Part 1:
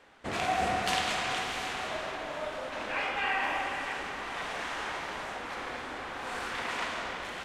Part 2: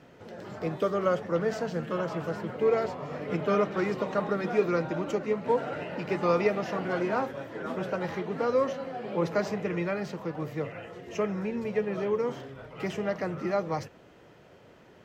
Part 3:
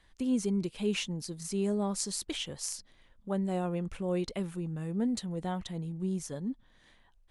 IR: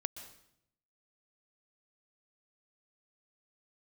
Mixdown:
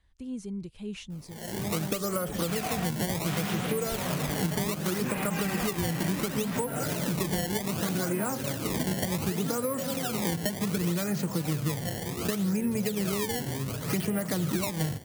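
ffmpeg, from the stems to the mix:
-filter_complex "[0:a]adelay=2150,volume=2dB[a];[1:a]acrusher=samples=20:mix=1:aa=0.000001:lfo=1:lforange=32:lforate=0.67,dynaudnorm=f=150:g=5:m=12dB,highshelf=f=5.7k:g=11.5,adelay=1100,volume=-4.5dB[b];[2:a]equalizer=f=62:w=0.69:g=12.5,volume=-9.5dB,asplit=2[c][d];[d]apad=whole_len=423237[e];[a][e]sidechaingate=range=-33dB:threshold=-56dB:ratio=16:detection=peak[f];[f][b]amix=inputs=2:normalize=0,highpass=100,acompressor=threshold=-21dB:ratio=6,volume=0dB[g];[c][g]amix=inputs=2:normalize=0,asubboost=boost=3.5:cutoff=240,acompressor=threshold=-28dB:ratio=2.5"

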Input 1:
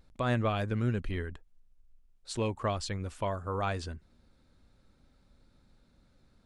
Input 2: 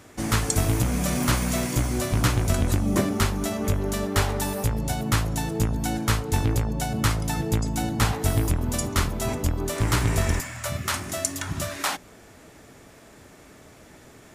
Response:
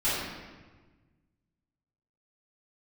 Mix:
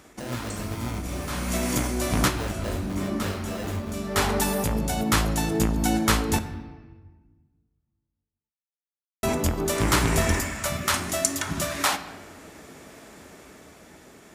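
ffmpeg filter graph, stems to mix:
-filter_complex "[0:a]lowshelf=f=200:g=11,acrusher=samples=39:mix=1:aa=0.000001,flanger=delay=15.5:depth=5:speed=2.5,volume=-4.5dB,asplit=2[a][b];[1:a]volume=0dB,asplit=3[c][d][e];[c]atrim=end=6.39,asetpts=PTS-STARTPTS,afade=t=out:st=6.386:d=0.004:c=hsin[f];[d]atrim=start=6.39:end=9.23,asetpts=PTS-STARTPTS,volume=0[g];[e]atrim=start=9.23,asetpts=PTS-STARTPTS,afade=t=in:d=0.004:c=hsin[h];[f][g][h]concat=n=3:v=0:a=1,asplit=2[i][j];[j]volume=-22dB[k];[b]apad=whole_len=632521[l];[i][l]sidechaincompress=threshold=-55dB:ratio=8:attack=10:release=246[m];[2:a]atrim=start_sample=2205[n];[k][n]afir=irnorm=-1:irlink=0[o];[a][m][o]amix=inputs=3:normalize=0,highpass=55,equalizer=f=110:t=o:w=0.48:g=-9.5,dynaudnorm=f=130:g=17:m=3.5dB"

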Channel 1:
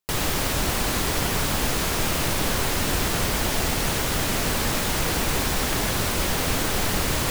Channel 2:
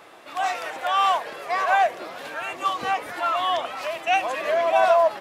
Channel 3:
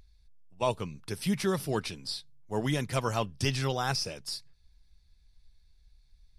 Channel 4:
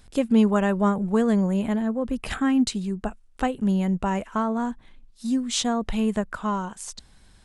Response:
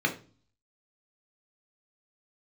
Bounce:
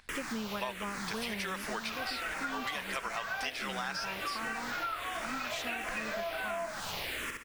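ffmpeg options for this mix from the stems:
-filter_complex "[0:a]acrossover=split=150|3000[a][b][c];[a]acompressor=threshold=-31dB:ratio=6[d];[d][b][c]amix=inputs=3:normalize=0,asplit=2[e][f];[f]afreqshift=-1.4[g];[e][g]amix=inputs=2:normalize=1,volume=-14.5dB,asplit=2[h][i];[i]volume=-4.5dB[j];[1:a]acompressor=threshold=-28dB:ratio=3,adelay=1600,volume=-8.5dB,asplit=2[k][l];[l]volume=-6.5dB[m];[2:a]highpass=540,volume=0dB[n];[3:a]volume=-13.5dB[o];[4:a]atrim=start_sample=2205[p];[m][p]afir=irnorm=-1:irlink=0[q];[j]aecho=0:1:65|130|195|260|325:1|0.34|0.116|0.0393|0.0134[r];[h][k][n][o][q][r]amix=inputs=6:normalize=0,equalizer=f=2k:w=0.57:g=12,acompressor=threshold=-34dB:ratio=6"

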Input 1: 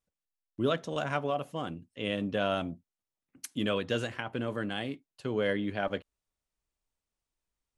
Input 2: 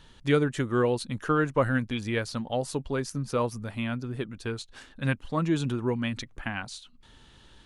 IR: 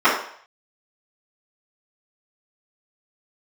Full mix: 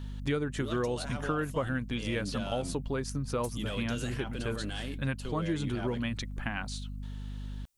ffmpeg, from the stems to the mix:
-filter_complex "[0:a]crystalizer=i=4:c=0,asoftclip=type=tanh:threshold=-18dB,alimiter=level_in=4.5dB:limit=-24dB:level=0:latency=1:release=12,volume=-4.5dB,volume=-1dB[a];[1:a]aeval=exprs='val(0)+0.0141*(sin(2*PI*50*n/s)+sin(2*PI*2*50*n/s)/2+sin(2*PI*3*50*n/s)/3+sin(2*PI*4*50*n/s)/4+sin(2*PI*5*50*n/s)/5)':c=same,volume=-0.5dB[b];[a][b]amix=inputs=2:normalize=0,acompressor=threshold=-29dB:ratio=3"

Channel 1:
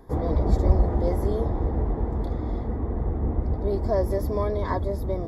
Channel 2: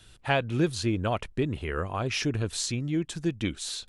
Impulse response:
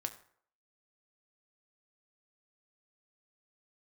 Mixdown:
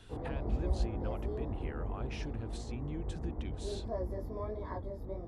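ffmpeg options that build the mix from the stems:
-filter_complex "[0:a]flanger=delay=16.5:depth=6.1:speed=1.5,volume=-10.5dB[a];[1:a]acompressor=threshold=-39dB:ratio=2.5,alimiter=level_in=9dB:limit=-24dB:level=0:latency=1:release=242,volume=-9dB,volume=-0.5dB[b];[a][b]amix=inputs=2:normalize=0,highshelf=f=3.5k:g=-10"

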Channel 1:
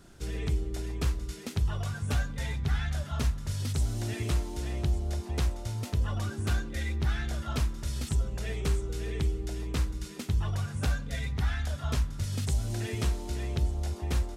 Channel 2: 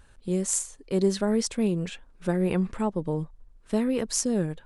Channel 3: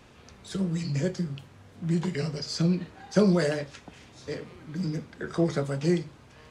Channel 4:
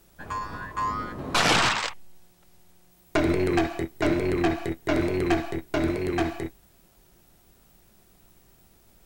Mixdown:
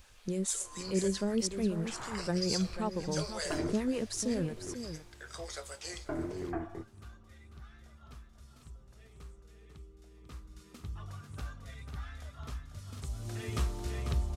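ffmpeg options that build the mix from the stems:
-filter_complex "[0:a]equalizer=f=1.2k:t=o:w=0.23:g=10,adelay=550,volume=-4dB,afade=t=in:st=10.15:d=0.56:silence=0.334965,afade=t=in:st=12.96:d=0.64:silence=0.316228,asplit=2[a][b];[b]volume=-8dB[c];[1:a]asoftclip=type=tanh:threshold=-12.5dB,acrossover=split=480[d][e];[d]aeval=exprs='val(0)*(1-0.7/2+0.7/2*cos(2*PI*7.2*n/s))':c=same[f];[e]aeval=exprs='val(0)*(1-0.7/2-0.7/2*cos(2*PI*7.2*n/s))':c=same[g];[f][g]amix=inputs=2:normalize=0,volume=-3dB,asplit=3[h][i][j];[i]volume=-10dB[k];[2:a]highpass=f=510:w=0.5412,highpass=f=510:w=1.3066,crystalizer=i=5:c=0,volume=-12.5dB,asplit=2[l][m];[m]volume=-18dB[n];[3:a]lowpass=f=1.6k:w=0.5412,lowpass=f=1.6k:w=1.3066,adelay=350,volume=-11dB,asplit=3[o][p][q];[o]atrim=end=4.74,asetpts=PTS-STARTPTS,afade=t=out:st=4.736:d=0.004:c=hsin[r];[p]atrim=start=4.74:end=6.04,asetpts=PTS-STARTPTS,volume=0[s];[q]atrim=start=6.04,asetpts=PTS-STARTPTS,afade=t=in:d=0.004:c=hsin[t];[r][s][t]concat=n=3:v=0:a=1[u];[j]apad=whole_len=414697[v];[u][v]sidechaincompress=threshold=-52dB:ratio=8:attack=16:release=204[w];[c][k][n]amix=inputs=3:normalize=0,aecho=0:1:494:1[x];[a][h][l][w][x]amix=inputs=5:normalize=0"

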